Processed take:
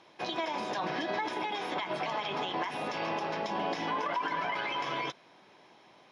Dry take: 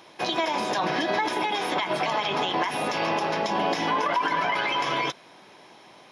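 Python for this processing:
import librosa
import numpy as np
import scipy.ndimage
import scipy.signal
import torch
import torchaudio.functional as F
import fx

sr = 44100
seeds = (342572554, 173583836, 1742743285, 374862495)

y = fx.air_absorb(x, sr, metres=58.0)
y = y * librosa.db_to_amplitude(-7.5)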